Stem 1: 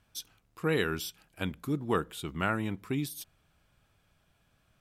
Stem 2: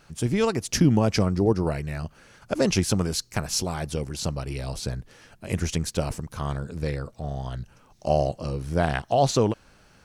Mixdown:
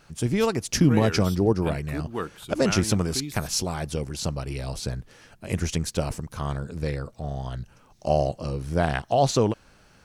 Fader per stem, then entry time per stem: −2.0, 0.0 decibels; 0.25, 0.00 seconds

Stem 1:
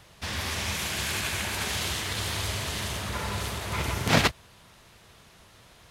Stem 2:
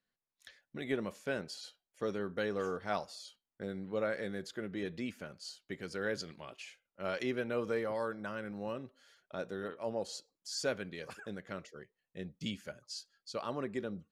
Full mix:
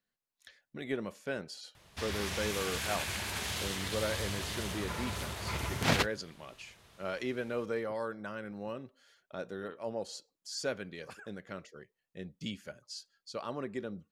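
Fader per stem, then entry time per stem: −6.5, −0.5 decibels; 1.75, 0.00 seconds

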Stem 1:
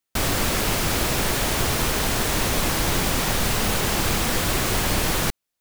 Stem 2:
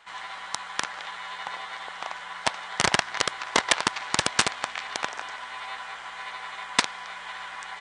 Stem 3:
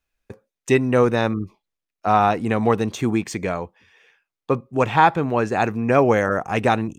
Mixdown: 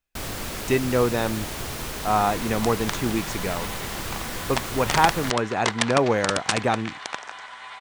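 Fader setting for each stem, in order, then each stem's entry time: −9.5, −2.5, −4.5 decibels; 0.00, 2.10, 0.00 seconds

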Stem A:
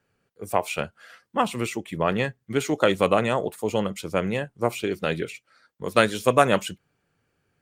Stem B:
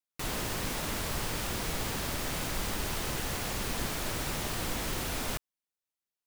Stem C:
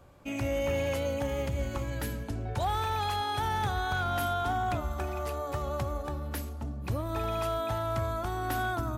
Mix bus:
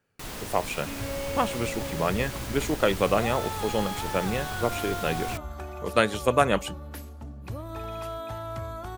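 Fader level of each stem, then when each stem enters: −3.0, −3.5, −4.0 decibels; 0.00, 0.00, 0.60 seconds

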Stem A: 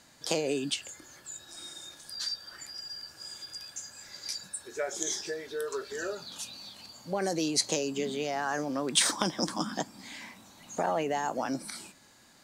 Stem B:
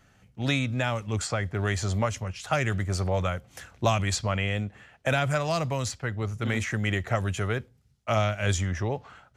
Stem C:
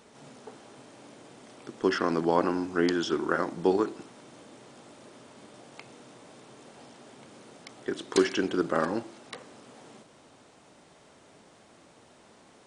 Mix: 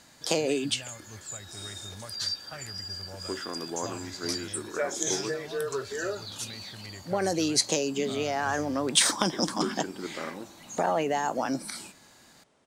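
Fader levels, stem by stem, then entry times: +3.0, −18.0, −10.5 decibels; 0.00, 0.00, 1.45 seconds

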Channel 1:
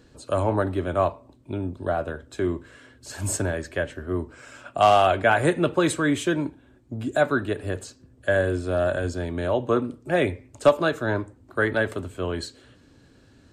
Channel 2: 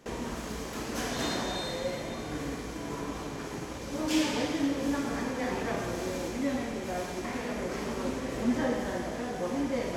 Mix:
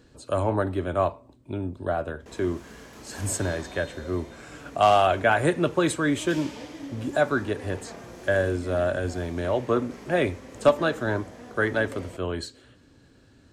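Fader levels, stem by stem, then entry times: −1.5, −9.5 decibels; 0.00, 2.20 seconds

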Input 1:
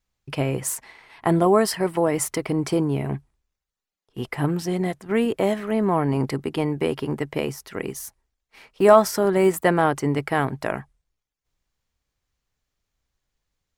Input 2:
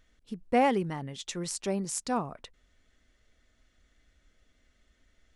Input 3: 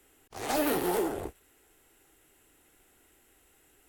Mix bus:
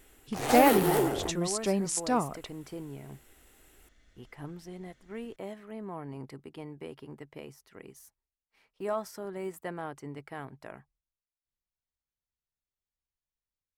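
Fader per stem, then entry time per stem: −19.0, +2.5, +2.5 decibels; 0.00, 0.00, 0.00 seconds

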